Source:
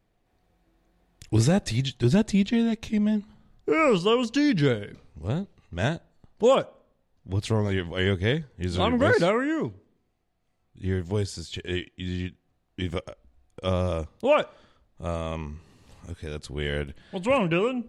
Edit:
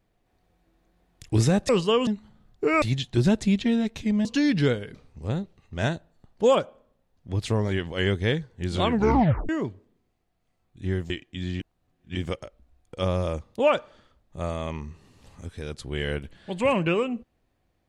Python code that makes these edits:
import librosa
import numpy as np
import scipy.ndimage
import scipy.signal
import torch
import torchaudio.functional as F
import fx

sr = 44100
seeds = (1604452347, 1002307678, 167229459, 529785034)

y = fx.edit(x, sr, fx.swap(start_s=1.69, length_s=1.43, other_s=3.87, other_length_s=0.38),
    fx.tape_stop(start_s=8.91, length_s=0.58),
    fx.cut(start_s=11.1, length_s=0.65),
    fx.reverse_span(start_s=12.25, length_s=0.55), tone=tone)